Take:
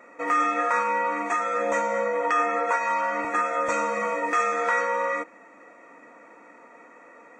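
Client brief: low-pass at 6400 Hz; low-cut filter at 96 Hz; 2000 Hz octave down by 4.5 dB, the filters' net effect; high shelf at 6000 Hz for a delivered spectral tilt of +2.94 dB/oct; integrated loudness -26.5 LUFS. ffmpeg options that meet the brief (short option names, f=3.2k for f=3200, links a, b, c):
-af "highpass=96,lowpass=6.4k,equalizer=f=2k:t=o:g=-4.5,highshelf=f=6k:g=-6,volume=-0.5dB"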